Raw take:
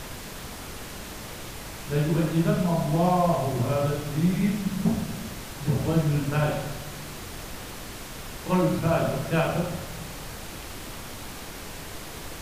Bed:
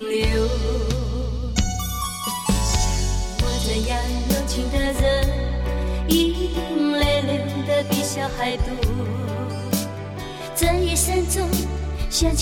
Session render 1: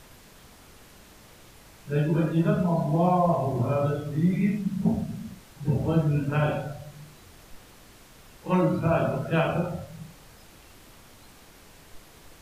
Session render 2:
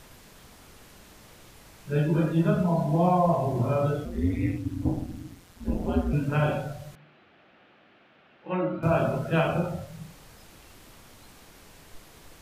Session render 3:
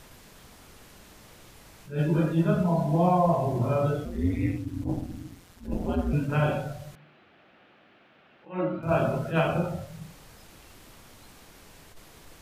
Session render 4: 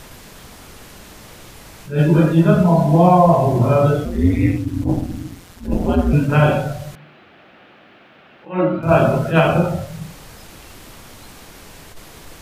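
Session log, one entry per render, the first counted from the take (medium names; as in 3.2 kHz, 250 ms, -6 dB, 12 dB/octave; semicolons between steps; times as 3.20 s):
noise print and reduce 13 dB
4.05–6.13 s: ring modulator 88 Hz; 6.95–8.83 s: cabinet simulation 270–2800 Hz, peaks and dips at 280 Hz -3 dB, 450 Hz -7 dB, 1 kHz -9 dB, 2 kHz -4 dB
attacks held to a fixed rise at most 180 dB/s
trim +11 dB; peak limiter -2 dBFS, peak gain reduction 1.5 dB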